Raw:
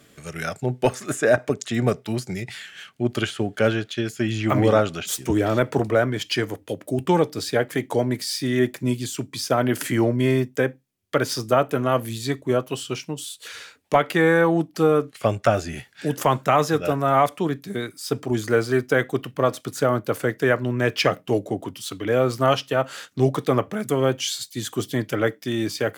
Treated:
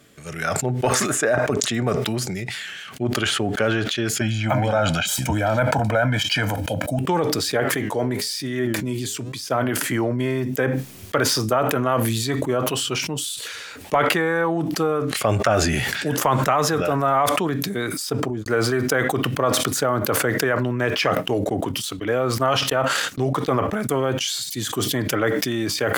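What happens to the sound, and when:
0:04.21–0:06.99: comb filter 1.3 ms, depth 96%
0:07.60–0:09.76: flanger 1.1 Hz, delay 6.6 ms, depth 4.7 ms, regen +84%
0:17.98–0:18.46: fade out and dull
0:21.15–0:24.28: noise gate −36 dBFS, range −13 dB
whole clip: downward compressor, threshold −20 dBFS; dynamic equaliser 1,100 Hz, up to +6 dB, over −37 dBFS, Q 0.78; level that may fall only so fast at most 21 dB per second

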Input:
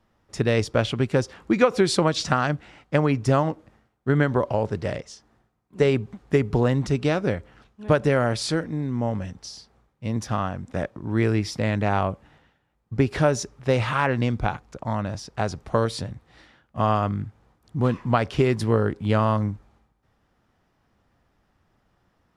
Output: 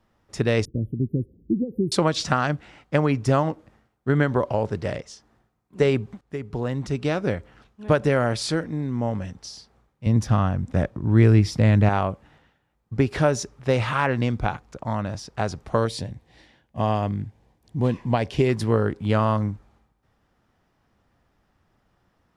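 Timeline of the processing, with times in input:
0:00.65–0:01.92: inverse Chebyshev band-stop filter 1,000–7,300 Hz, stop band 60 dB
0:06.21–0:07.34: fade in, from −16.5 dB
0:10.06–0:11.89: low-shelf EQ 200 Hz +12 dB
0:15.87–0:18.49: parametric band 1,300 Hz −13.5 dB 0.39 octaves

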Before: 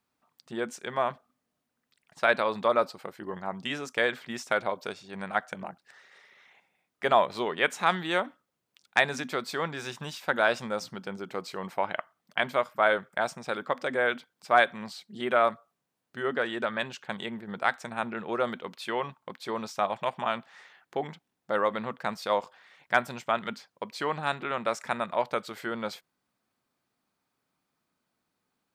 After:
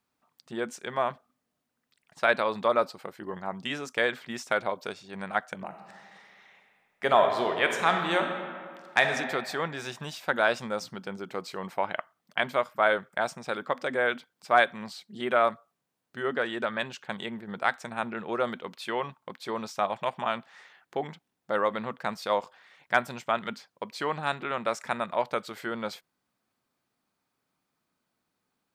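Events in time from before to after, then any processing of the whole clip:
0:05.65–0:09.08: thrown reverb, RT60 2 s, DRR 4 dB

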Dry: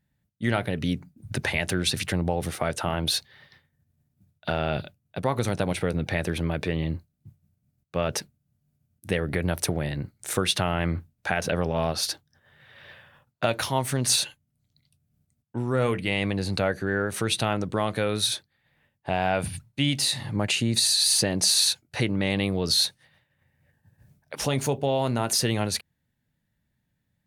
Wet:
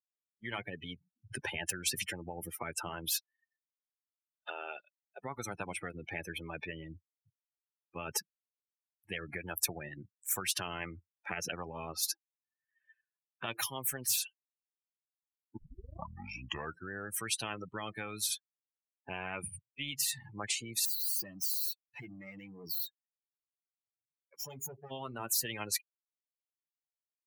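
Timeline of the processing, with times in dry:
0:03.11–0:05.22: high-pass filter 460 Hz
0:15.57: tape start 1.34 s
0:20.85–0:24.91: tube saturation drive 32 dB, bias 0.55
whole clip: spectral dynamics exaggerated over time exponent 3; high-pass filter 160 Hz; every bin compressed towards the loudest bin 10 to 1

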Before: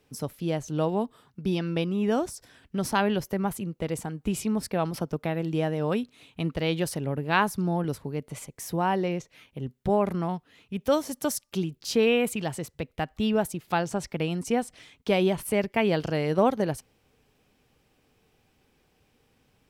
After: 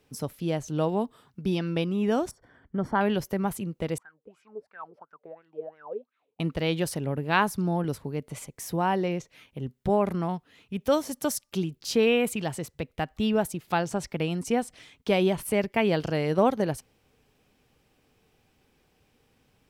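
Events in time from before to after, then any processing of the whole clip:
0:02.31–0:03.01: Savitzky-Golay smoothing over 41 samples
0:03.98–0:06.40: LFO wah 2.9 Hz 420–1,600 Hz, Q 12

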